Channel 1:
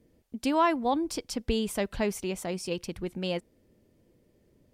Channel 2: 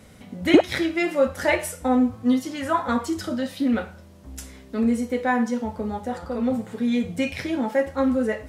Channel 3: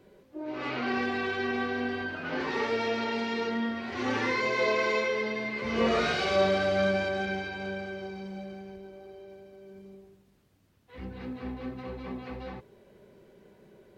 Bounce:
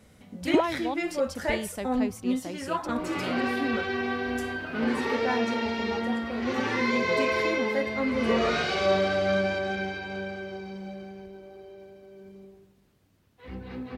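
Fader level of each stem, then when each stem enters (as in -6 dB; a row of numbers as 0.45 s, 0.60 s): -5.5 dB, -7.5 dB, +1.0 dB; 0.00 s, 0.00 s, 2.50 s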